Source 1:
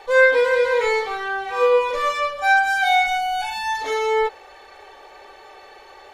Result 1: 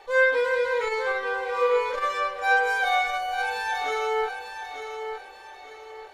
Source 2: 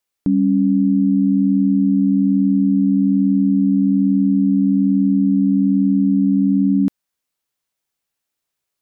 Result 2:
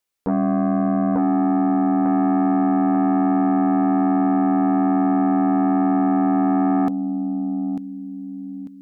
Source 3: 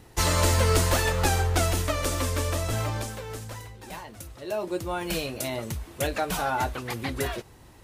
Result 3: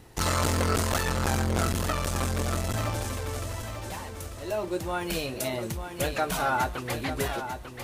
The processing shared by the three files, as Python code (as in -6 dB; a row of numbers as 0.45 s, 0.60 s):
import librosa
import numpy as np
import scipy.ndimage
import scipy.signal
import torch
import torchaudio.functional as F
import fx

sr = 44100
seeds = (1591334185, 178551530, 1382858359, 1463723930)

y = fx.echo_feedback(x, sr, ms=895, feedback_pct=36, wet_db=-8.0)
y = fx.dynamic_eq(y, sr, hz=1300.0, q=3.2, threshold_db=-37.0, ratio=4.0, max_db=5)
y = fx.transformer_sat(y, sr, knee_hz=510.0)
y = y * 10.0 ** (-9 / 20.0) / np.max(np.abs(y))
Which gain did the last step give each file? -6.5 dB, -1.0 dB, 0.0 dB